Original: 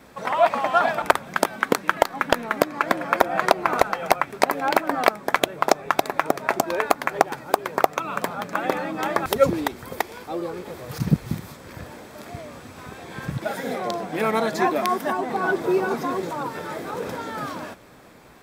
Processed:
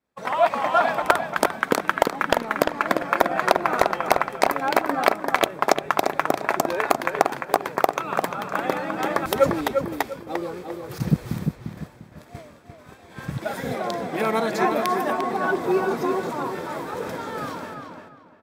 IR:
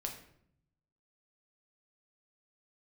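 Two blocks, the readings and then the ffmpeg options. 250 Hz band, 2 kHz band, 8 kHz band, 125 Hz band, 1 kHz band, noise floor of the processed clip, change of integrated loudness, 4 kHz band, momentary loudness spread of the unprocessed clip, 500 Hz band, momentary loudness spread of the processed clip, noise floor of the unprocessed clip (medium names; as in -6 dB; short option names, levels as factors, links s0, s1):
0.0 dB, 0.0 dB, -1.0 dB, 0.0 dB, 0.0 dB, -48 dBFS, 0.0 dB, -0.5 dB, 15 LU, 0.0 dB, 12 LU, -44 dBFS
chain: -filter_complex "[0:a]agate=range=0.0224:threshold=0.0282:ratio=3:detection=peak,asplit=2[s0][s1];[s1]adelay=348,lowpass=f=3000:p=1,volume=0.562,asplit=2[s2][s3];[s3]adelay=348,lowpass=f=3000:p=1,volume=0.28,asplit=2[s4][s5];[s5]adelay=348,lowpass=f=3000:p=1,volume=0.28,asplit=2[s6][s7];[s7]adelay=348,lowpass=f=3000:p=1,volume=0.28[s8];[s2][s4][s6][s8]amix=inputs=4:normalize=0[s9];[s0][s9]amix=inputs=2:normalize=0,volume=0.891"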